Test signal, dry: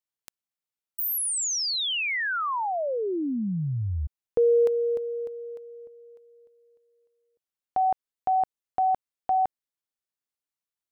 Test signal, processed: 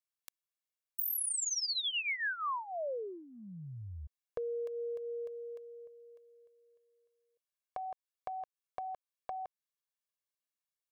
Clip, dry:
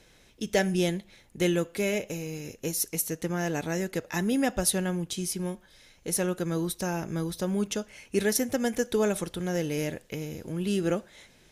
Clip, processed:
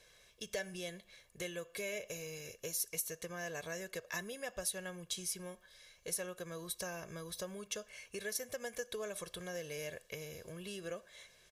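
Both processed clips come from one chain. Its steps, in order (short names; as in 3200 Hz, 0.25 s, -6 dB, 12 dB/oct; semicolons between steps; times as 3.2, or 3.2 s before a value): compressor 6:1, threshold -30 dBFS; low shelf 430 Hz -11 dB; comb 1.8 ms, depth 69%; gain -5 dB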